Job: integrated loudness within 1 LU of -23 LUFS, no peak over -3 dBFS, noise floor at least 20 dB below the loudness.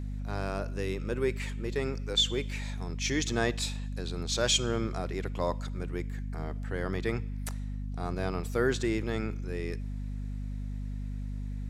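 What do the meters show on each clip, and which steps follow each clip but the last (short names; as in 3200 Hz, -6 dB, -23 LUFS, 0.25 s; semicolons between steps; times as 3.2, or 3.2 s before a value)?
hum 50 Hz; harmonics up to 250 Hz; hum level -33 dBFS; loudness -32.5 LUFS; peak -12.0 dBFS; loudness target -23.0 LUFS
-> notches 50/100/150/200/250 Hz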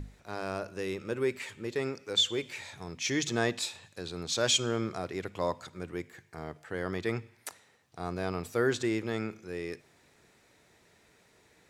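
hum none; loudness -33.0 LUFS; peak -12.0 dBFS; loudness target -23.0 LUFS
-> gain +10 dB; limiter -3 dBFS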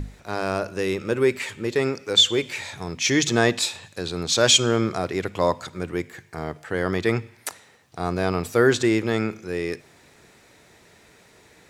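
loudness -23.0 LUFS; peak -3.0 dBFS; noise floor -54 dBFS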